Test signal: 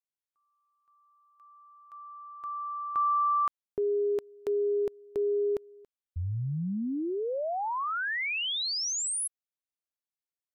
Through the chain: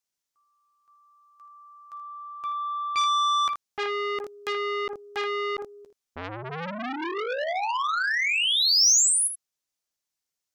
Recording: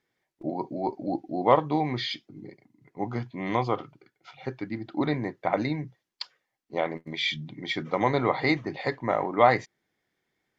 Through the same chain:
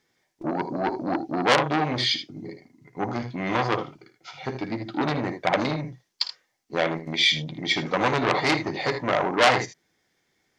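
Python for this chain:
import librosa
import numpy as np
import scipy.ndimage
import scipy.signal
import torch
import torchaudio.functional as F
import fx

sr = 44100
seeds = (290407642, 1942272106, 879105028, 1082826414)

y = fx.peak_eq(x, sr, hz=5900.0, db=7.5, octaves=1.0)
y = fx.room_early_taps(y, sr, ms=(12, 55, 79), db=(-10.5, -13.0, -11.0))
y = fx.transformer_sat(y, sr, knee_hz=3800.0)
y = F.gain(torch.from_numpy(y), 5.5).numpy()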